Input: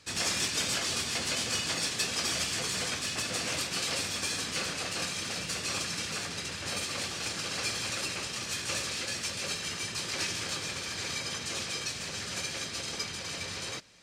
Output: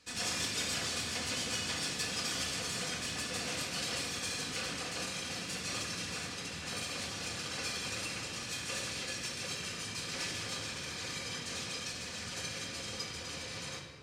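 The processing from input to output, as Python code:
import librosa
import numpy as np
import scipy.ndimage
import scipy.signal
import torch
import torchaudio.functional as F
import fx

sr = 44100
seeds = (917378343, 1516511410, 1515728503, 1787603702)

y = fx.room_shoebox(x, sr, seeds[0], volume_m3=2300.0, walls='mixed', distance_m=1.9)
y = F.gain(torch.from_numpy(y), -7.0).numpy()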